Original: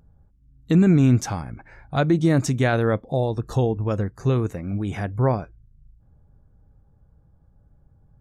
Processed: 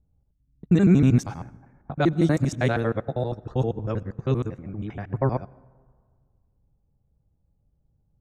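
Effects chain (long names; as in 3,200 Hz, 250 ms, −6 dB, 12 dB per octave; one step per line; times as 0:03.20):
reversed piece by piece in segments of 79 ms
low-pass that shuts in the quiet parts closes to 820 Hz, open at −16 dBFS
dense smooth reverb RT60 1.8 s, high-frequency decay 0.4×, pre-delay 80 ms, DRR 17.5 dB
expander for the loud parts 1.5 to 1, over −36 dBFS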